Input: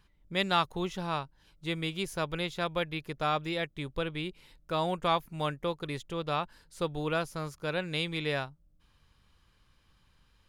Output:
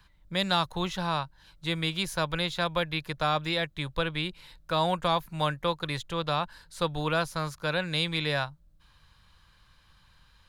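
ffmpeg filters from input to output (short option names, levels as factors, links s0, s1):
-filter_complex "[0:a]equalizer=f=250:t=o:w=0.33:g=-10,equalizer=f=400:t=o:w=0.33:g=-10,equalizer=f=1000:t=o:w=0.33:g=4,equalizer=f=1600:t=o:w=0.33:g=5,equalizer=f=4000:t=o:w=0.33:g=6,acrossover=split=110|670|4200[s0][s1][s2][s3];[s2]alimiter=level_in=1.19:limit=0.0631:level=0:latency=1:release=27,volume=0.841[s4];[s0][s1][s4][s3]amix=inputs=4:normalize=0,volume=1.78"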